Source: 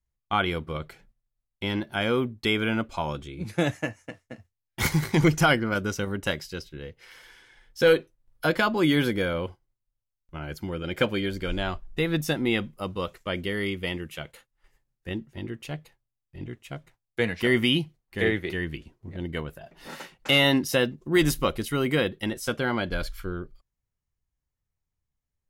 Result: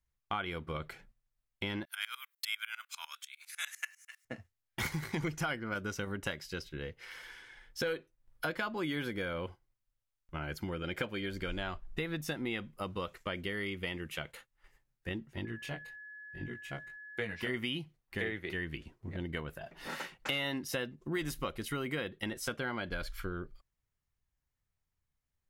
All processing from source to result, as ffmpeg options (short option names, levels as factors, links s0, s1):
-filter_complex "[0:a]asettb=1/sr,asplit=3[s0][s1][s2];[s0]atrim=end=1.854[s3];[s1]atrim=start=1.85:end=4.25,asetpts=PTS-STARTPTS,afade=t=in:d=0.004:c=qsin,afade=t=out:st=2.396:d=0.004:c=qsin,highpass=f=1300:w=0.5412,highpass=f=1300:w=1.3066,aemphasis=mode=production:type=riaa,aeval=exprs='val(0)*pow(10,-23*if(lt(mod(-10*n/s,1),2*abs(-10)/1000),1-mod(-10*n/s,1)/(2*abs(-10)/1000),(mod(-10*n/s,1)-2*abs(-10)/1000)/(1-2*abs(-10)/1000))/20)':c=same[s4];[s2]atrim=start=4.246[s5];[s3][s4]acrossfade=d=0.004:c1=hsin:c2=qsin[s6];[s6][s5]acrossfade=d=0.004:c1=qsin:c2=hsin,asettb=1/sr,asplit=3[s7][s8][s9];[s7]atrim=end=15.454[s10];[s8]atrim=start=15.45:end=17.54,asetpts=PTS-STARTPTS,afade=t=in:d=0.004:c=qsin,afade=t=out:st=2.086:d=0.004:c=qsin,flanger=delay=17.5:depth=6.2:speed=1.2,aeval=exprs='val(0)+0.00355*sin(2*PI*1700*n/s)':c=same[s11];[s9]atrim=start=17.536[s12];[s10][s11]acrossfade=d=0.004:c1=hsin:c2=qsin[s13];[s13][s12]acrossfade=d=0.004:c1=qsin:c2=hsin,equalizer=f=1700:w=0.78:g=4.5,acompressor=threshold=0.0224:ratio=4,volume=0.794"